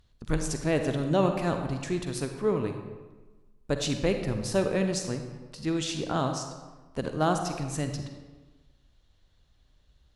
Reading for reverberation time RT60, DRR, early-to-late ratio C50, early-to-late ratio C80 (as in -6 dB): 1.2 s, 5.5 dB, 6.0 dB, 8.0 dB